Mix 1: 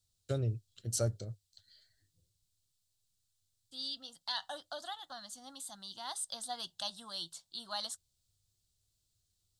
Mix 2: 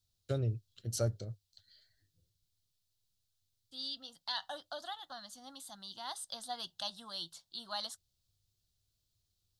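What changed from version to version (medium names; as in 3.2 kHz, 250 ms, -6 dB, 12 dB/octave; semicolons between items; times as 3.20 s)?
master: add peaking EQ 8.1 kHz -7.5 dB 0.59 oct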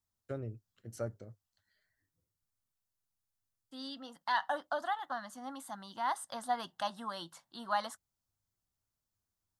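first voice -11.5 dB; master: add graphic EQ 250/500/1000/2000/4000 Hz +9/+4/+10/+11/-11 dB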